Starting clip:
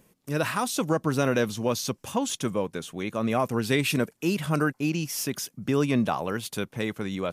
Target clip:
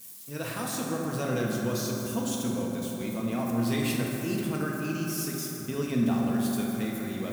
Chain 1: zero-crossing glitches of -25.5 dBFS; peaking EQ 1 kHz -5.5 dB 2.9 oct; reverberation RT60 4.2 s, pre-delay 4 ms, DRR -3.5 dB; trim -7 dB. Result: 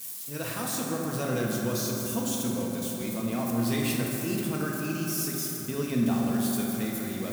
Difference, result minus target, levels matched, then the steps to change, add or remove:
zero-crossing glitches: distortion +7 dB
change: zero-crossing glitches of -33 dBFS

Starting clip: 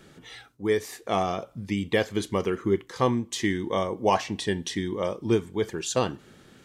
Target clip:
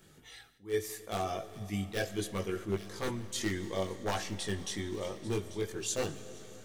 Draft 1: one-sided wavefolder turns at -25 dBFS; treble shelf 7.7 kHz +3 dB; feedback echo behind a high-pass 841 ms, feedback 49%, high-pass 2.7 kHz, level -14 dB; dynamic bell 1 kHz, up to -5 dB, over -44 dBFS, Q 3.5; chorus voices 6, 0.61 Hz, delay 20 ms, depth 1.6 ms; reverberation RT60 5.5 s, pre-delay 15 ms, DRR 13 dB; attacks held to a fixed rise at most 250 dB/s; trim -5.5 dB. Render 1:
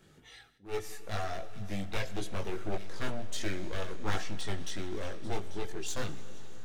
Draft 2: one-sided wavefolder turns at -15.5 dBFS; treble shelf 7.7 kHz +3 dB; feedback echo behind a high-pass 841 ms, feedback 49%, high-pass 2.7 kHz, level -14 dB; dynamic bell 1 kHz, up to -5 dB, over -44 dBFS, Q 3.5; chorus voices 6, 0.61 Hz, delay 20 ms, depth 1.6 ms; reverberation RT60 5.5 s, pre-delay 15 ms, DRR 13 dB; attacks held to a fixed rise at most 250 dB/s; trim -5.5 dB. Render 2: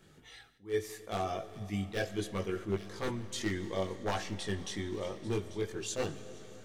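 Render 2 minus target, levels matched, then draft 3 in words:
8 kHz band -4.0 dB
one-sided wavefolder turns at -15.5 dBFS; treble shelf 7.7 kHz +13.5 dB; feedback echo behind a high-pass 841 ms, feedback 49%, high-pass 2.7 kHz, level -14 dB; dynamic bell 1 kHz, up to -5 dB, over -44 dBFS, Q 3.5; chorus voices 6, 0.61 Hz, delay 20 ms, depth 1.6 ms; reverberation RT60 5.5 s, pre-delay 15 ms, DRR 13 dB; attacks held to a fixed rise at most 250 dB/s; trim -5.5 dB

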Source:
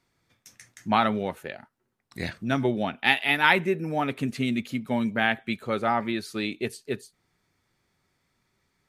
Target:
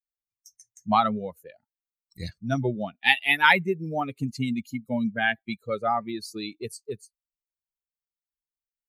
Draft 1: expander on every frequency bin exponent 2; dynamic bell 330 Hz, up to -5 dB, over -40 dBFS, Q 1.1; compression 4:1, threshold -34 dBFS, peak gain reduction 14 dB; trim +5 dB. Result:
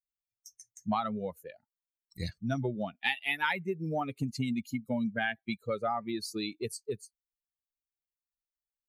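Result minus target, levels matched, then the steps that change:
compression: peak gain reduction +14 dB
remove: compression 4:1, threshold -34 dBFS, peak gain reduction 14 dB

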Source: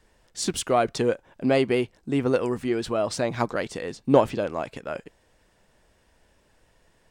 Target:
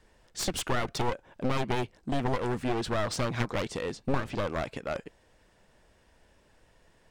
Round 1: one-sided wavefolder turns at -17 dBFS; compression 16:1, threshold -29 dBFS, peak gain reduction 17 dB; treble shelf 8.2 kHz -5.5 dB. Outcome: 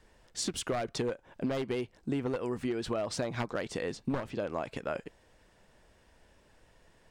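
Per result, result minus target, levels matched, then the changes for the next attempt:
one-sided wavefolder: distortion -13 dB; compression: peak gain reduction +5.5 dB
change: one-sided wavefolder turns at -27 dBFS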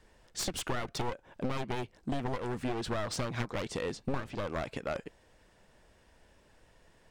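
compression: peak gain reduction +6 dB
change: compression 16:1, threshold -22.5 dBFS, peak gain reduction 11.5 dB

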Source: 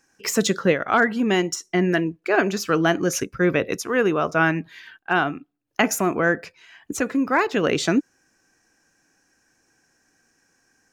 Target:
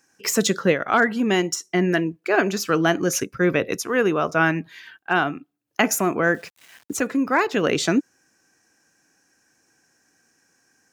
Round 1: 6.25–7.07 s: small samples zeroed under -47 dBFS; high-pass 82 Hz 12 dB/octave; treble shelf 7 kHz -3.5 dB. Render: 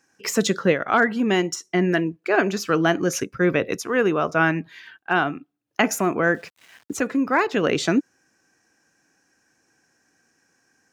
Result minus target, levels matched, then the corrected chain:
8 kHz band -3.5 dB
6.25–7.07 s: small samples zeroed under -47 dBFS; high-pass 82 Hz 12 dB/octave; treble shelf 7 kHz +4.5 dB

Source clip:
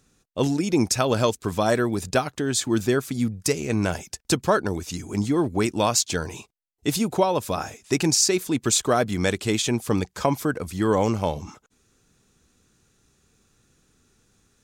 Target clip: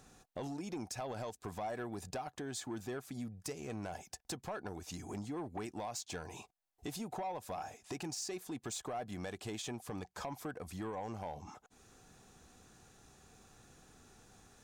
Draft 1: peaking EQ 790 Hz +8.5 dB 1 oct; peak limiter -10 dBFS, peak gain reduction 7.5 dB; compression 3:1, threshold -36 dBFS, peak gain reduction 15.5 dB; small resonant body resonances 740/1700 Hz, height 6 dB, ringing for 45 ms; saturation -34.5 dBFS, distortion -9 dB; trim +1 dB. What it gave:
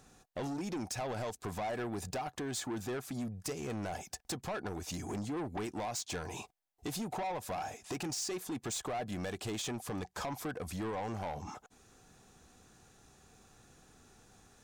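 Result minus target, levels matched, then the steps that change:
compression: peak gain reduction -7 dB
change: compression 3:1, threshold -46.5 dBFS, peak gain reduction 22.5 dB

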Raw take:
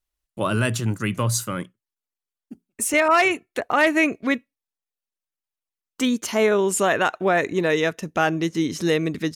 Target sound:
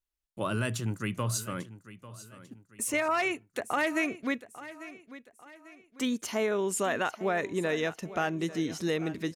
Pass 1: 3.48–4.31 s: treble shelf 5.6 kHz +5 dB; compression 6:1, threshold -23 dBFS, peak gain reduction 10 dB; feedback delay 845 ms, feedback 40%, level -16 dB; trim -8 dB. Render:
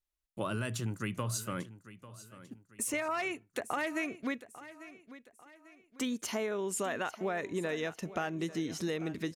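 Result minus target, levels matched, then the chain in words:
compression: peak gain reduction +6 dB
3.48–4.31 s: treble shelf 5.6 kHz +5 dB; compression 6:1, threshold -15.5 dBFS, peak gain reduction 3.5 dB; feedback delay 845 ms, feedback 40%, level -16 dB; trim -8 dB

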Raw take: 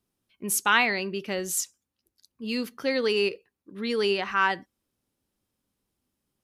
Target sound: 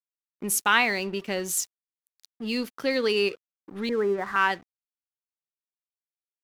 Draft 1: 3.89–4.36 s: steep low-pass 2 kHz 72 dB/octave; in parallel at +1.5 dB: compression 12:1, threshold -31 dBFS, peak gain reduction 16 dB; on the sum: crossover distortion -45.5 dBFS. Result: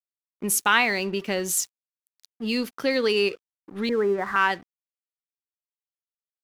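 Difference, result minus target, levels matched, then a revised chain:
compression: peak gain reduction -9 dB
3.89–4.36 s: steep low-pass 2 kHz 72 dB/octave; in parallel at +1.5 dB: compression 12:1, threshold -41 dBFS, peak gain reduction 25.5 dB; on the sum: crossover distortion -45.5 dBFS

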